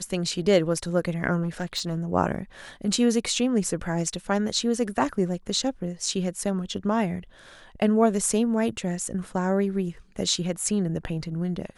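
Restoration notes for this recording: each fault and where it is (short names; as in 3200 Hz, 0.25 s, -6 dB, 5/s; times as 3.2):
1.42–2.05 clipped -22.5 dBFS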